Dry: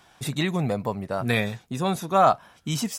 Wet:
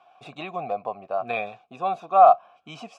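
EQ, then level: vowel filter a; air absorption 56 m; +9.0 dB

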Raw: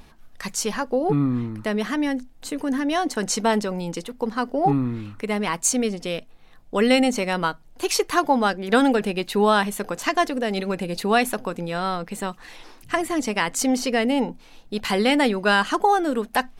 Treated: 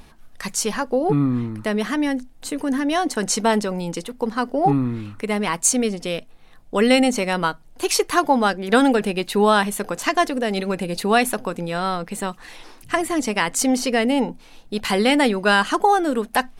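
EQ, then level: bell 9500 Hz +4 dB 0.42 oct; +2.0 dB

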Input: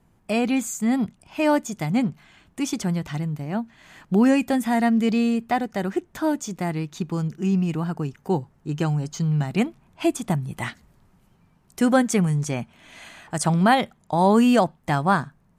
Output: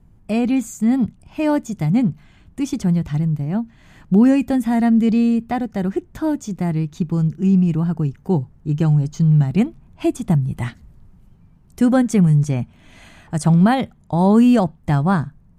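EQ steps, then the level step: low shelf 140 Hz +11.5 dB; low shelf 420 Hz +7.5 dB; -3.5 dB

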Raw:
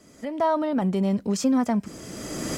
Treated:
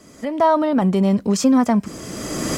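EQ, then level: bell 1100 Hz +4.5 dB 0.21 oct; +6.5 dB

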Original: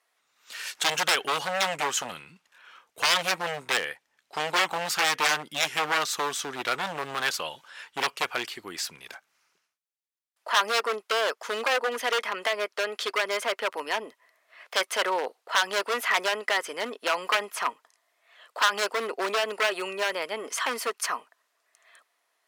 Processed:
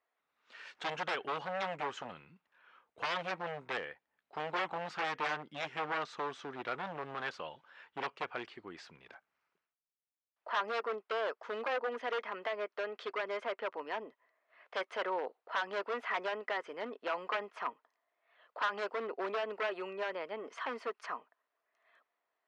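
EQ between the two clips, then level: tape spacing loss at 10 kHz 35 dB; -5.5 dB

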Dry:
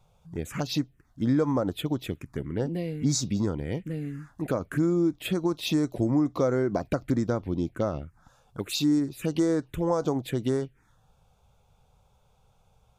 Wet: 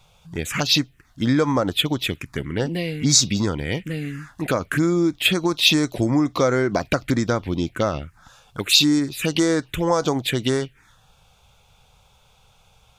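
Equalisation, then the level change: low shelf 200 Hz +3 dB; bell 2900 Hz +14 dB 2.7 oct; high shelf 7900 Hz +8.5 dB; +2.5 dB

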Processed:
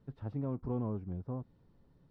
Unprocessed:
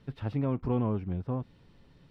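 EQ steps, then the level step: bell 2600 Hz -10 dB 1.3 oct; high shelf 3400 Hz -9.5 dB; -6.5 dB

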